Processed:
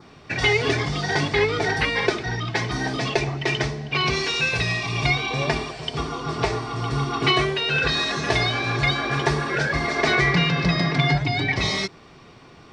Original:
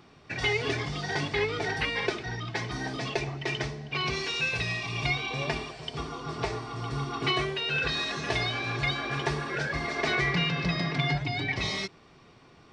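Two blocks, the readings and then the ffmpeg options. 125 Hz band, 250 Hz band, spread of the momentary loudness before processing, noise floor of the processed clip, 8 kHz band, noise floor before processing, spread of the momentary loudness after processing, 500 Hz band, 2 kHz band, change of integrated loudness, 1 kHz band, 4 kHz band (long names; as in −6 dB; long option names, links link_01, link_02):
+8.0 dB, +8.0 dB, 7 LU, −48 dBFS, +8.0 dB, −56 dBFS, 6 LU, +8.0 dB, +7.0 dB, +7.5 dB, +8.0 dB, +7.0 dB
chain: -af "adynamicequalizer=threshold=0.00631:dfrequency=2800:dqfactor=2.8:tfrequency=2800:tqfactor=2.8:attack=5:release=100:ratio=0.375:range=2:mode=cutabove:tftype=bell,volume=8dB"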